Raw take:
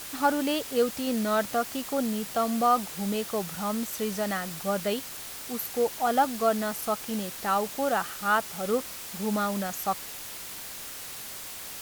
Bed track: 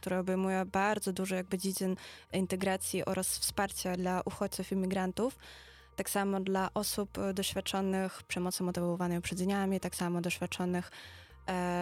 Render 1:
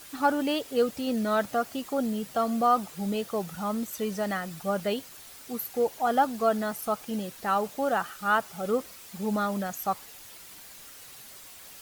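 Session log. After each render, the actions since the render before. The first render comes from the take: noise reduction 9 dB, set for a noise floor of -40 dBFS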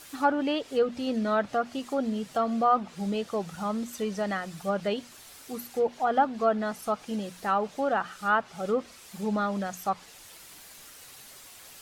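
hum notches 60/120/180/240 Hz; low-pass that closes with the level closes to 2.8 kHz, closed at -21 dBFS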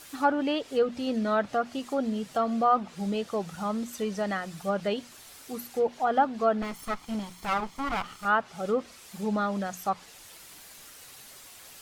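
6.62–8.25 s: comb filter that takes the minimum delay 0.94 ms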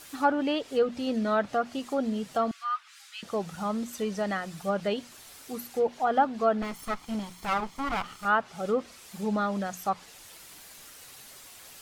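2.51–3.23 s: steep high-pass 1.3 kHz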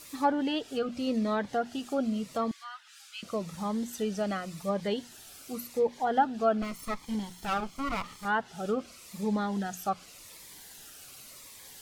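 Shepard-style phaser falling 0.88 Hz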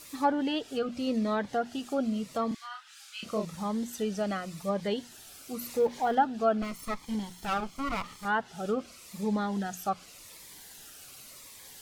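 2.48–3.45 s: doubling 33 ms -3.5 dB; 5.61–6.15 s: companding laws mixed up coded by mu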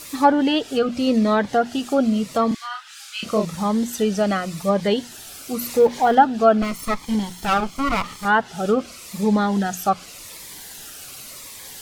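trim +11 dB

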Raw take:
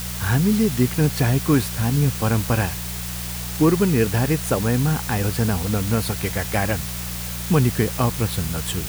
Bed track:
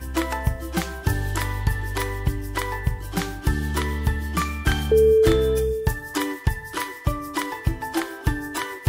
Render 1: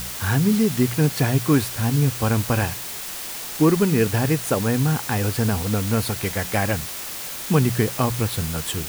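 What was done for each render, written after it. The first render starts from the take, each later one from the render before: de-hum 60 Hz, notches 3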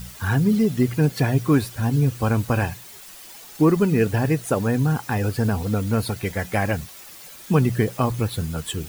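noise reduction 12 dB, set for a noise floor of -32 dBFS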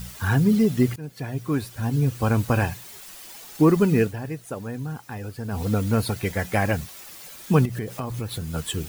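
0.96–2.40 s: fade in, from -20.5 dB; 3.99–5.63 s: dip -11 dB, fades 0.15 s; 7.65–8.54 s: compression 4:1, threshold -27 dBFS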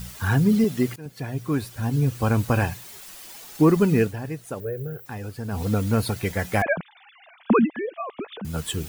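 0.64–1.06 s: high-pass 230 Hz 6 dB/octave; 4.60–5.06 s: FFT filter 140 Hz 0 dB, 260 Hz -17 dB, 400 Hz +12 dB, 580 Hz +6 dB, 930 Hz -27 dB, 1.5 kHz -3 dB, 4.4 kHz -14 dB, 9.4 kHz -29 dB, 15 kHz +12 dB; 6.62–8.45 s: formants replaced by sine waves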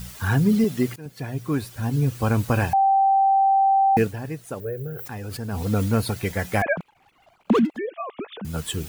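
2.73–3.97 s: bleep 780 Hz -14.5 dBFS; 4.94–5.98 s: decay stretcher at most 34 dB/s; 6.77–7.78 s: median filter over 25 samples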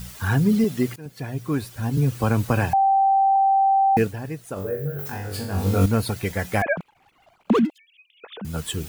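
1.97–3.36 s: three bands compressed up and down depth 40%; 4.54–5.86 s: flutter echo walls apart 3.6 m, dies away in 0.5 s; 7.70–8.24 s: steep high-pass 2.6 kHz 48 dB/octave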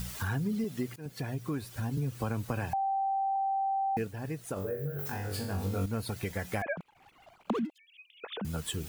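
compression 3:1, threshold -34 dBFS, peak gain reduction 15 dB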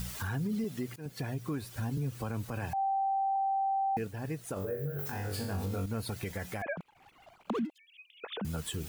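peak limiter -26.5 dBFS, peak gain reduction 7.5 dB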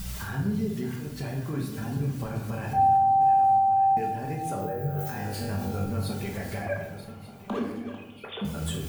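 backward echo that repeats 594 ms, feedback 54%, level -12 dB; simulated room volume 320 m³, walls mixed, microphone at 1.2 m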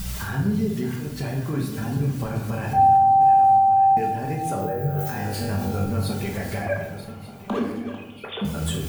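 trim +5 dB

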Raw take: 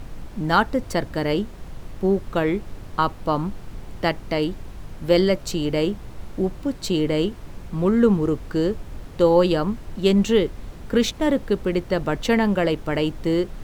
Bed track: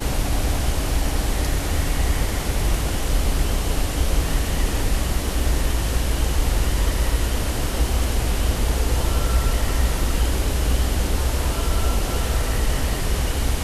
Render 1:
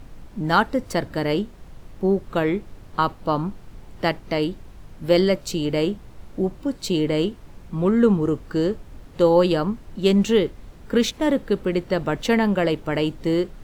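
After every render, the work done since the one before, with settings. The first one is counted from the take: noise print and reduce 6 dB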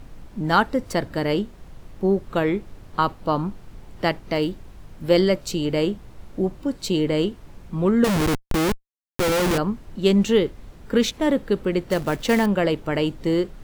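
4.33–5.04 s: block-companded coder 7-bit; 8.04–9.58 s: Schmitt trigger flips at -24.5 dBFS; 11.89–12.46 s: short-mantissa float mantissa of 2-bit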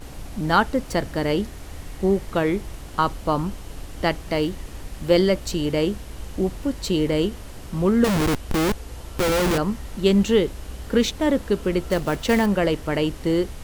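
add bed track -16 dB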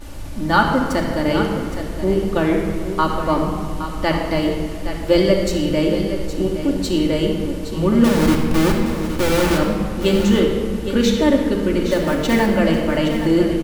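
delay 817 ms -10.5 dB; simulated room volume 3500 m³, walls mixed, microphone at 2.5 m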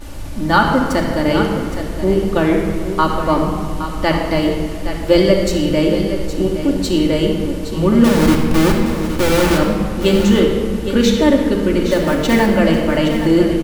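trim +3 dB; peak limiter -1 dBFS, peak gain reduction 2 dB

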